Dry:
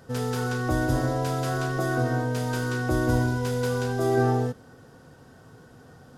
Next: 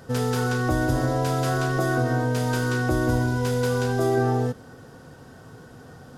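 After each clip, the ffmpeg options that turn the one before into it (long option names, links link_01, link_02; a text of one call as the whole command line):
ffmpeg -i in.wav -af "acompressor=threshold=-25dB:ratio=2.5,volume=5dB" out.wav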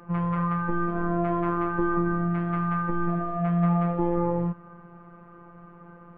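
ffmpeg -i in.wav -af "highpass=frequency=380:width_type=q:width=0.5412,highpass=frequency=380:width_type=q:width=1.307,lowpass=frequency=2300:width_type=q:width=0.5176,lowpass=frequency=2300:width_type=q:width=0.7071,lowpass=frequency=2300:width_type=q:width=1.932,afreqshift=-310,afftfilt=real='hypot(re,im)*cos(PI*b)':imag='0':win_size=1024:overlap=0.75,volume=5.5dB" out.wav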